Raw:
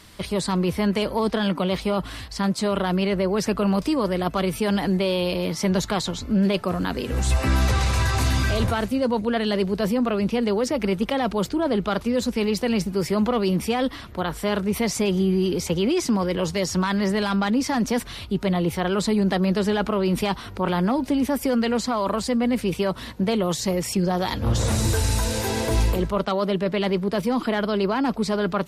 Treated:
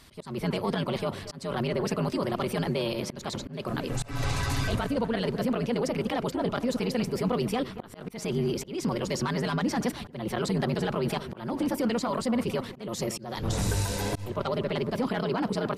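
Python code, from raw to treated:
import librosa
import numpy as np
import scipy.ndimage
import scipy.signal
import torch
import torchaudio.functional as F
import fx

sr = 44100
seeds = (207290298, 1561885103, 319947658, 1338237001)

y = fx.echo_wet_lowpass(x, sr, ms=422, feedback_pct=53, hz=2300.0, wet_db=-13.5)
y = fx.stretch_grains(y, sr, factor=0.55, grain_ms=20.0)
y = fx.auto_swell(y, sr, attack_ms=251.0)
y = y * librosa.db_to_amplitude(-4.5)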